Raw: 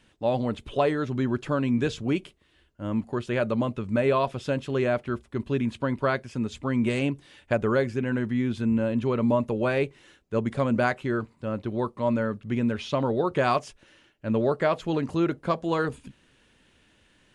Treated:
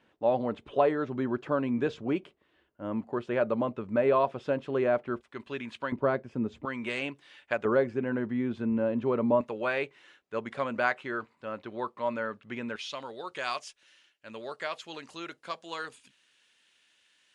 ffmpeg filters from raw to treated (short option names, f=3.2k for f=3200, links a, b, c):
-af "asetnsamples=n=441:p=0,asendcmd='5.21 bandpass f 2000;5.92 bandpass f 420;6.65 bandpass f 1900;7.65 bandpass f 630;9.41 bandpass f 1700;12.76 bandpass f 5000',bandpass=f=700:t=q:w=0.57:csg=0"